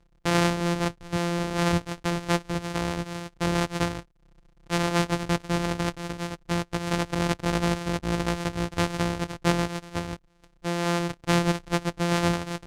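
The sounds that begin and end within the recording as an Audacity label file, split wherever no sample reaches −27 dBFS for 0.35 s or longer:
4.700000	10.140000	sound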